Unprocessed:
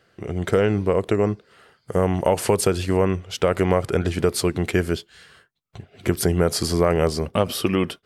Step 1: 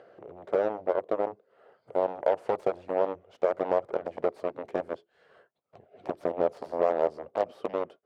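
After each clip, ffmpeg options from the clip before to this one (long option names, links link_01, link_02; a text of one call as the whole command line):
ffmpeg -i in.wav -af "acompressor=mode=upward:threshold=-26dB:ratio=2.5,aeval=exprs='0.596*(cos(1*acos(clip(val(0)/0.596,-1,1)))-cos(1*PI/2))+0.0841*(cos(3*acos(clip(val(0)/0.596,-1,1)))-cos(3*PI/2))+0.211*(cos(5*acos(clip(val(0)/0.596,-1,1)))-cos(5*PI/2))+0.266*(cos(7*acos(clip(val(0)/0.596,-1,1)))-cos(7*PI/2))+0.0299*(cos(8*acos(clip(val(0)/0.596,-1,1)))-cos(8*PI/2))':channel_layout=same,bandpass=frequency=590:width_type=q:width=2.5:csg=0,volume=-2.5dB" out.wav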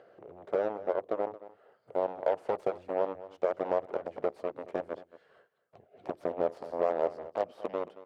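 ffmpeg -i in.wav -af "aecho=1:1:224:0.15,volume=-3.5dB" out.wav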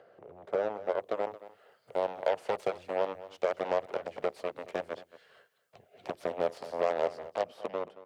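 ffmpeg -i in.wav -filter_complex "[0:a]equalizer=frequency=310:width=2.2:gain=-4.5,acrossover=split=170|2100[link_01][link_02][link_03];[link_03]dynaudnorm=framelen=190:gausssize=9:maxgain=11dB[link_04];[link_01][link_02][link_04]amix=inputs=3:normalize=0" out.wav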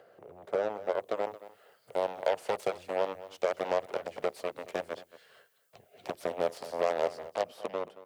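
ffmpeg -i in.wav -af "crystalizer=i=1.5:c=0" out.wav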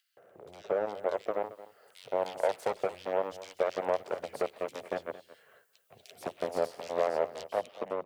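ffmpeg -i in.wav -filter_complex "[0:a]acrossover=split=2700[link_01][link_02];[link_01]adelay=170[link_03];[link_03][link_02]amix=inputs=2:normalize=0" out.wav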